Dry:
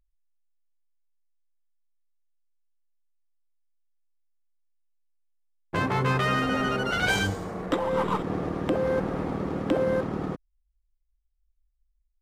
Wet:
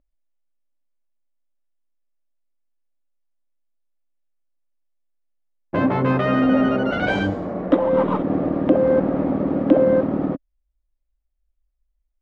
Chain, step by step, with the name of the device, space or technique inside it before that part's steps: inside a cardboard box (LPF 2900 Hz 12 dB/oct; small resonant body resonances 270/570 Hz, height 13 dB, ringing for 25 ms)

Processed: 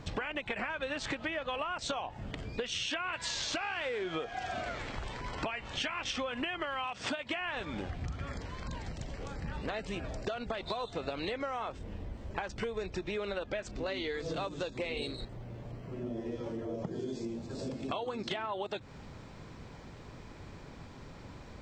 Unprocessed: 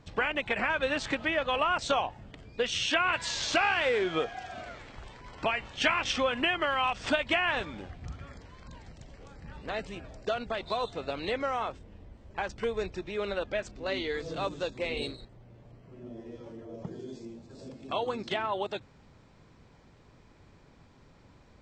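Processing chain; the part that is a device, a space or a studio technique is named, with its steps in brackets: 6.85–7.41 HPF 110 Hz 12 dB/oct; serial compression, peaks first (compressor 5:1, threshold -38 dBFS, peak gain reduction 16 dB; compressor 2:1, threshold -45 dBFS, peak gain reduction 6.5 dB); gain +9 dB

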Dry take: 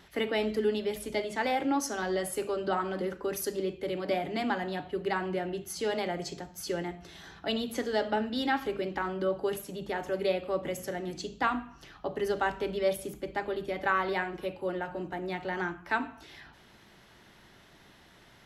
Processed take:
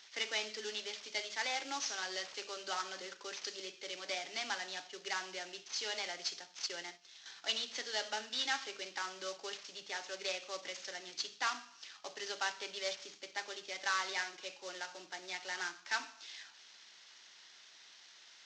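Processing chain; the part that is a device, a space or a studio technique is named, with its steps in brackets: 6.66–7.26 gate -40 dBFS, range -9 dB; early wireless headset (HPF 230 Hz 6 dB/oct; CVSD 32 kbps); differentiator; gain +8.5 dB

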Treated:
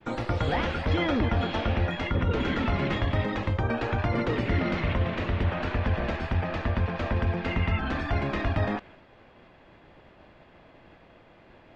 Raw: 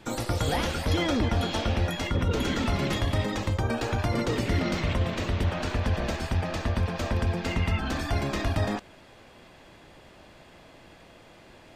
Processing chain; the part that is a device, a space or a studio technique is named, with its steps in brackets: hearing-loss simulation (LPF 2600 Hz 12 dB/oct; expander -49 dBFS); dynamic EQ 2200 Hz, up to +3 dB, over -48 dBFS, Q 0.73

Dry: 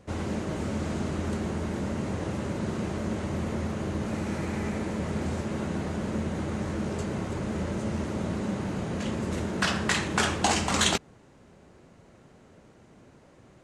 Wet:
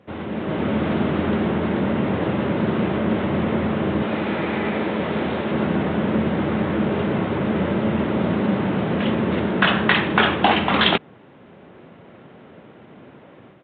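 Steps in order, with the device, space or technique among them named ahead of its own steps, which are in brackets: 4.02–5.52 tone controls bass -6 dB, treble +8 dB; Bluetooth headset (HPF 140 Hz 12 dB/oct; AGC gain up to 8.5 dB; downsampling 8000 Hz; gain +2.5 dB; SBC 64 kbps 16000 Hz)

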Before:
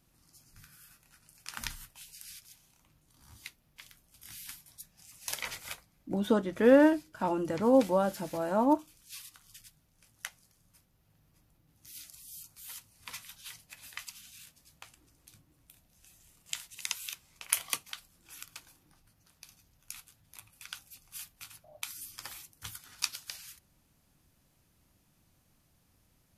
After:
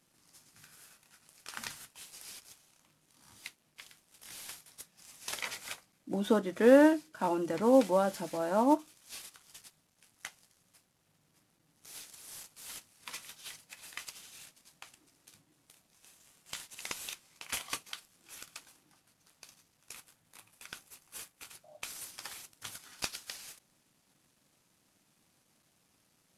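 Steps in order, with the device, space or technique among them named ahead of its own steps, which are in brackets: early wireless headset (HPF 180 Hz 12 dB/oct; CVSD 64 kbps); 19.93–21.51 bell 4400 Hz -3.5 dB 1.6 oct

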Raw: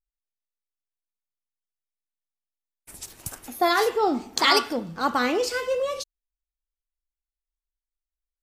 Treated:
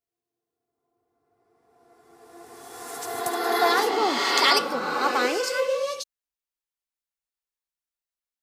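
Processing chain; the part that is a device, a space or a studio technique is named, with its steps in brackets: ghost voice (reverse; reverb RT60 2.8 s, pre-delay 72 ms, DRR 1 dB; reverse; HPF 490 Hz 6 dB/oct)

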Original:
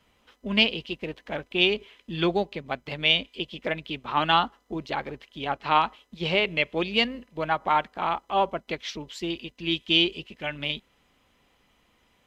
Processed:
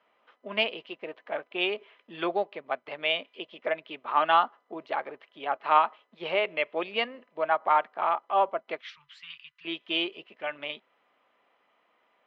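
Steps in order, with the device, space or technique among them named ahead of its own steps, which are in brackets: 8.81–9.65 inverse Chebyshev band-stop 220–750 Hz, stop band 40 dB; tin-can telephone (BPF 500–2000 Hz; small resonant body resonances 640/1200 Hz, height 6 dB)

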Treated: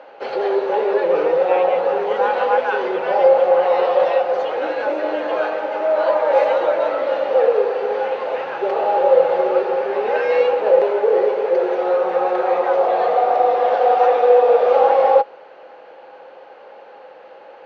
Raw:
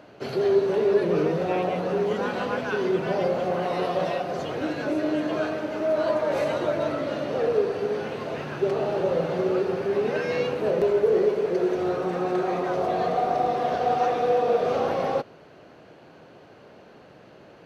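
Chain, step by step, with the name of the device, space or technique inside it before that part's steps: tin-can telephone (BPF 620–3000 Hz; small resonant body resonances 520/820 Hz, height 14 dB, ringing for 60 ms); gain +7 dB

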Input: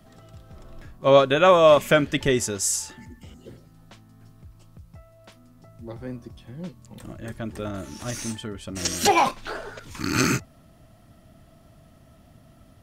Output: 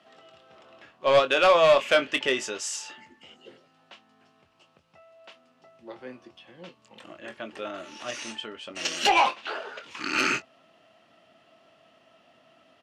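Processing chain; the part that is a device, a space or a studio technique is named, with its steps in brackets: intercom (BPF 460–4500 Hz; bell 2800 Hz +9 dB 0.36 oct; soft clip -13 dBFS, distortion -14 dB; doubler 23 ms -9.5 dB)

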